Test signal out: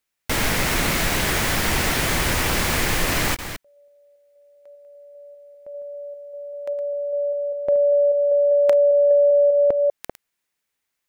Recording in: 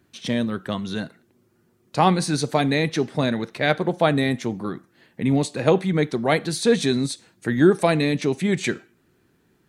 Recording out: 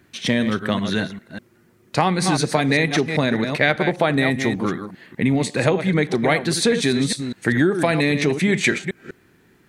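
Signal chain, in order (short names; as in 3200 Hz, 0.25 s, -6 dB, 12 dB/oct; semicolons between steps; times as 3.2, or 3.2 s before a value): reverse delay 0.198 s, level -10 dB; compressor 6:1, threshold -21 dBFS; bell 2000 Hz +6 dB 0.78 oct; gain +6 dB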